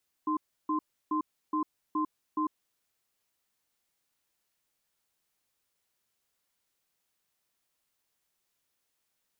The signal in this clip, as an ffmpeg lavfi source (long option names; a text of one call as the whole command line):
ffmpeg -f lavfi -i "aevalsrc='0.0355*(sin(2*PI*308*t)+sin(2*PI*1040*t))*clip(min(mod(t,0.42),0.1-mod(t,0.42))/0.005,0,1)':duration=2.47:sample_rate=44100" out.wav